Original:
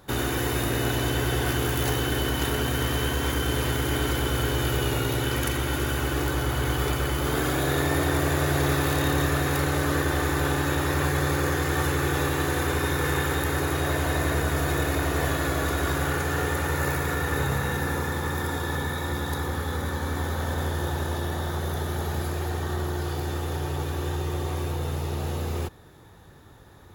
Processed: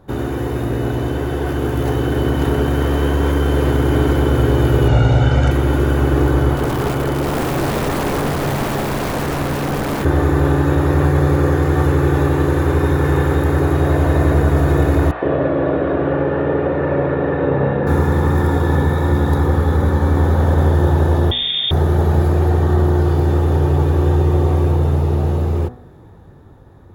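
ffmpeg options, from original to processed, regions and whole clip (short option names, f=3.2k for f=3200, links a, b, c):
-filter_complex "[0:a]asettb=1/sr,asplit=3[a][b][c];[a]atrim=end=4.884[d];[b]atrim=start=4.88:end=5.51,asetpts=PTS-STARTPTS,afade=t=in:d=0.004:c=qsin,afade=t=out:st=0.626:d=0.004:c=qsin,lowpass=f=7.6k:w=0.5412,lowpass=f=7.6k:w=1.3066,aecho=1:1:1.4:0.57,atrim=end_sample=27783[e];[c]atrim=start=5.506[f];[d][e]acrossfade=d=0.004:c1=hsin:c2=qsin[g];[g][f]acrossfade=d=0.004:c1=qsin:c2=hsin,asettb=1/sr,asplit=3[h][i][j];[h]atrim=end=6.534[k];[i]atrim=start=6.53:end=10.05,asetpts=PTS-STARTPTS,afade=t=in:d=0.004:c=qsin,afade=t=out:st=3.516:d=0.004:c=qsin,highpass=120,aeval=exprs='(mod(10.6*val(0)+1,2)-1)/10.6':c=same[l];[j]atrim=start=10.046[m];[k][l]acrossfade=d=0.004:c1=hsin:c2=qsin[n];[n][m]acrossfade=d=0.004:c1=qsin:c2=hsin,asettb=1/sr,asplit=3[o][p][q];[o]atrim=end=15.114[r];[p]atrim=start=15.11:end=17.87,asetpts=PTS-STARTPTS,afade=t=in:d=0.004:c=qsin,afade=t=out:st=2.756:d=0.004:c=qsin,highpass=170,equalizer=f=580:t=q:w=4:g=10,equalizer=f=1.4k:t=q:w=4:g=-4,equalizer=f=2.1k:t=q:w=4:g=-4,lowpass=f=2.9k:w=0.5412,lowpass=f=2.9k:w=1.3066,acrossover=split=780[s][t];[s]adelay=110[u];[u][t]amix=inputs=2:normalize=0,atrim=end_sample=121716[v];[q]atrim=start=17.866[w];[r][v]acrossfade=d=0.004:c1=hsin:c2=qsin[x];[x][w]acrossfade=d=0.004:c1=qsin:c2=hsin,asettb=1/sr,asplit=3[y][z][aa];[y]atrim=end=21.314[ab];[z]atrim=start=21.31:end=21.71,asetpts=PTS-STARTPTS,afade=t=in:d=0.004:c=qsin,afade=t=out:st=0.396:d=0.004:c=qsin,highpass=83,lowshelf=f=530:t=q:w=1.5:g=11,lowpass=f=3.1k:t=q:w=0.5098,lowpass=f=3.1k:t=q:w=0.6013,lowpass=f=3.1k:t=q:w=0.9,lowpass=f=3.1k:t=q:w=2.563,afreqshift=-3700[ac];[aa]atrim=start=21.706[ad];[ab][ac]acrossfade=d=0.004:c1=hsin:c2=qsin[ae];[ae][ad]acrossfade=d=0.004:c1=qsin:c2=hsin,tiltshelf=f=1.5k:g=9.5,bandreject=f=61.45:t=h:w=4,bandreject=f=122.9:t=h:w=4,bandreject=f=184.35:t=h:w=4,bandreject=f=245.8:t=h:w=4,bandreject=f=307.25:t=h:w=4,bandreject=f=368.7:t=h:w=4,bandreject=f=430.15:t=h:w=4,bandreject=f=491.6:t=h:w=4,bandreject=f=553.05:t=h:w=4,bandreject=f=614.5:t=h:w=4,bandreject=f=675.95:t=h:w=4,bandreject=f=737.4:t=h:w=4,bandreject=f=798.85:t=h:w=4,bandreject=f=860.3:t=h:w=4,bandreject=f=921.75:t=h:w=4,bandreject=f=983.2:t=h:w=4,bandreject=f=1.04465k:t=h:w=4,bandreject=f=1.1061k:t=h:w=4,bandreject=f=1.16755k:t=h:w=4,bandreject=f=1.229k:t=h:w=4,bandreject=f=1.29045k:t=h:w=4,bandreject=f=1.3519k:t=h:w=4,bandreject=f=1.41335k:t=h:w=4,bandreject=f=1.4748k:t=h:w=4,bandreject=f=1.53625k:t=h:w=4,bandreject=f=1.5977k:t=h:w=4,bandreject=f=1.65915k:t=h:w=4,bandreject=f=1.7206k:t=h:w=4,bandreject=f=1.78205k:t=h:w=4,bandreject=f=1.8435k:t=h:w=4,bandreject=f=1.90495k:t=h:w=4,bandreject=f=1.9664k:t=h:w=4,bandreject=f=2.02785k:t=h:w=4,bandreject=f=2.0893k:t=h:w=4,bandreject=f=2.15075k:t=h:w=4,bandreject=f=2.2122k:t=h:w=4,dynaudnorm=f=400:g=11:m=11.5dB,volume=-1.5dB"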